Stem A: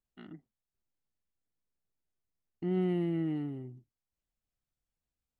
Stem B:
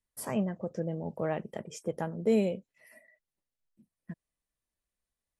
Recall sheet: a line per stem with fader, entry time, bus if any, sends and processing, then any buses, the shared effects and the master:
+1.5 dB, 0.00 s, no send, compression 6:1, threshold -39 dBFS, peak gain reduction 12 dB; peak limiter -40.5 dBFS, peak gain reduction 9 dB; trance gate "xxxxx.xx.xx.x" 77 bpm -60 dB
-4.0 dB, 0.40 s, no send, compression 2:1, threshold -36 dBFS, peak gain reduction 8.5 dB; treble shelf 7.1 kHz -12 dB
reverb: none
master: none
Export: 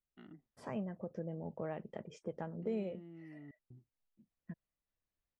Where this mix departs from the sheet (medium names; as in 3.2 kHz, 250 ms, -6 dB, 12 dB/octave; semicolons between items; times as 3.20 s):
stem A +1.5 dB -> -5.5 dB; master: extra distance through air 110 m